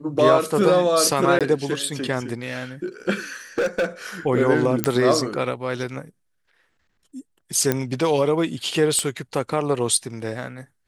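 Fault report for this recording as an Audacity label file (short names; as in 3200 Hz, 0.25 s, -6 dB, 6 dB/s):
1.390000	1.410000	gap 17 ms
3.580000	3.850000	clipped -17.5 dBFS
4.840000	4.840000	pop -3 dBFS
7.720000	7.720000	pop -6 dBFS
8.990000	8.990000	pop -11 dBFS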